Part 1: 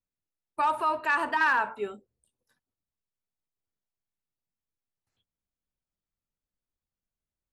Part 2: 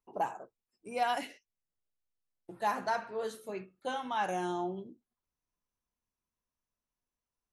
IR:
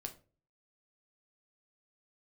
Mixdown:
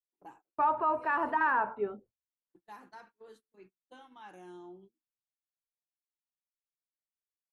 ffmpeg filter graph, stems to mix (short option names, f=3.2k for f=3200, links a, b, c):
-filter_complex "[0:a]lowpass=1.2k,volume=0dB,asplit=2[a][b];[1:a]equalizer=f=315:t=o:w=0.33:g=11,equalizer=f=630:t=o:w=0.33:g=-10,equalizer=f=6.3k:t=o:w=0.33:g=-4,adelay=50,volume=-17dB[c];[b]apad=whole_len=333921[d];[c][d]sidechaincompress=threshold=-32dB:ratio=3:attack=16:release=1020[e];[a][e]amix=inputs=2:normalize=0,agate=range=-29dB:threshold=-56dB:ratio=16:detection=peak"